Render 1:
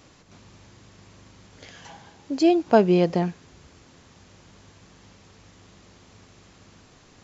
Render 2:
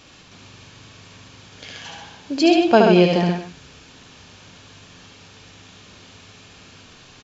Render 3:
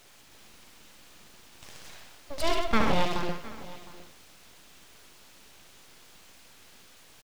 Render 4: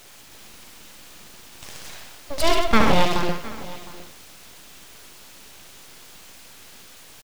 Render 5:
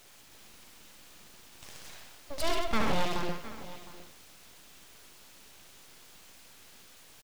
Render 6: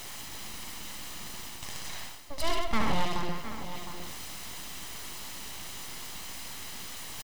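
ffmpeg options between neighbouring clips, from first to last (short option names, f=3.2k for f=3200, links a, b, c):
-filter_complex "[0:a]equalizer=f=2.9k:w=0.69:g=9,bandreject=f=2k:w=9.9,asplit=2[a][b];[b]aecho=0:1:73|131|225:0.668|0.531|0.178[c];[a][c]amix=inputs=2:normalize=0,volume=1.5dB"
-af "aecho=1:1:710:0.119,aeval=exprs='abs(val(0))':c=same,acrusher=bits=5:dc=4:mix=0:aa=0.000001,volume=-8.5dB"
-af "highshelf=f=7.6k:g=4.5,volume=7.5dB"
-af "asoftclip=type=tanh:threshold=-8dB,volume=-9dB"
-af "aecho=1:1:1:0.34,areverse,acompressor=mode=upward:threshold=-27dB:ratio=2.5,areverse"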